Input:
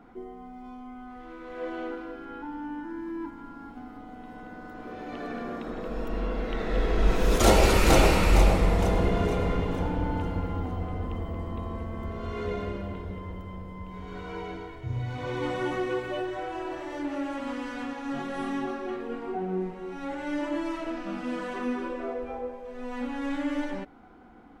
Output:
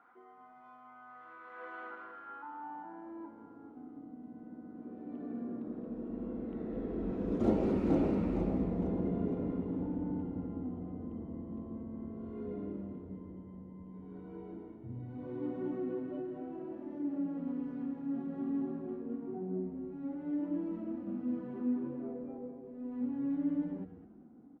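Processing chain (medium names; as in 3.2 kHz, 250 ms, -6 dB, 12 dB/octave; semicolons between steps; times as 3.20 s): frequency-shifting echo 202 ms, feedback 38%, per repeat -110 Hz, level -10.5 dB; band-pass sweep 1.3 kHz -> 250 Hz, 2.25–4.23 s; trim -1 dB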